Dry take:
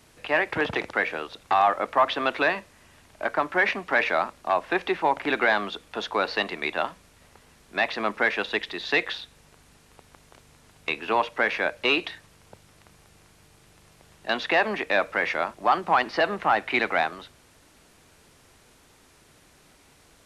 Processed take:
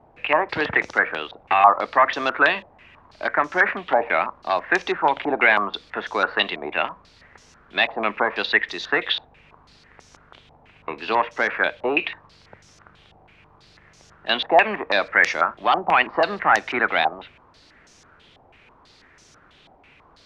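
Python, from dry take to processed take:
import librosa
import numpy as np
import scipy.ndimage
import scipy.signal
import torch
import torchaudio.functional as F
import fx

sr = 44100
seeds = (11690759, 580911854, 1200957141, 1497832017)

y = fx.filter_held_lowpass(x, sr, hz=6.1, low_hz=790.0, high_hz=6000.0)
y = y * 10.0 ** (1.0 / 20.0)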